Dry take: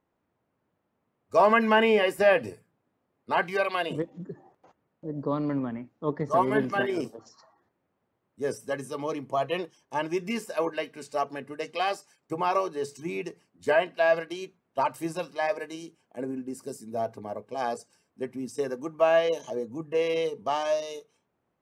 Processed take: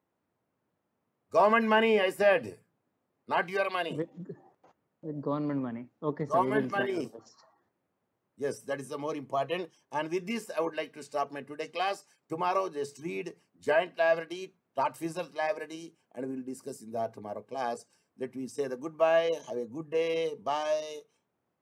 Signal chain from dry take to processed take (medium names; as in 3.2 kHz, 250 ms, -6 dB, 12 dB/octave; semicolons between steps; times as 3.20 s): high-pass 77 Hz; trim -3 dB